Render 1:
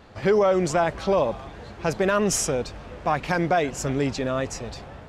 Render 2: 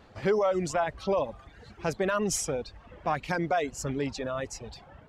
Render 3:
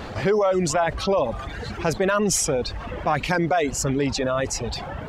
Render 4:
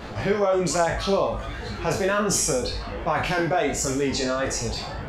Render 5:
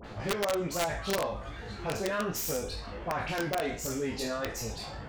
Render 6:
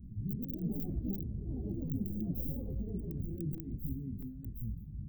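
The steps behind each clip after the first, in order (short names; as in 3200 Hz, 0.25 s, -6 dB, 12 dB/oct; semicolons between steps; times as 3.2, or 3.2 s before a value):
reverb removal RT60 1.1 s; gain -5 dB
fast leveller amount 50%; gain +4 dB
spectral trails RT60 0.56 s; chorus 1.3 Hz, delay 17.5 ms, depth 2.6 ms
self-modulated delay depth 0.085 ms; dispersion highs, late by 45 ms, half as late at 1700 Hz; wrapped overs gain 13 dB; gain -8.5 dB
tracing distortion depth 0.07 ms; inverse Chebyshev band-stop 540–9400 Hz, stop band 50 dB; echoes that change speed 0.188 s, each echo +4 st, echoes 3; gain +1.5 dB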